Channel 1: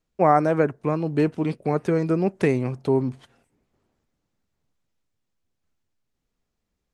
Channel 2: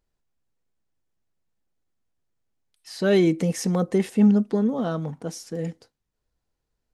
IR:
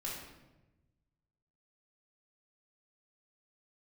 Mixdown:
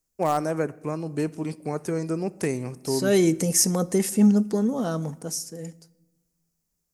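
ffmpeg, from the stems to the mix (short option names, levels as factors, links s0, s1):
-filter_complex "[0:a]asoftclip=type=hard:threshold=0.422,volume=0.473,asplit=2[s0][s1];[s1]volume=0.133[s2];[1:a]dynaudnorm=f=220:g=9:m=3.16,volume=0.376,afade=t=in:st=2.66:d=0.51:silence=0.251189,afade=t=out:st=5.11:d=0.35:silence=0.375837,asplit=2[s3][s4];[s4]volume=0.119[s5];[2:a]atrim=start_sample=2205[s6];[s2][s5]amix=inputs=2:normalize=0[s7];[s7][s6]afir=irnorm=-1:irlink=0[s8];[s0][s3][s8]amix=inputs=3:normalize=0,aexciter=amount=4.6:drive=7.4:freq=5100"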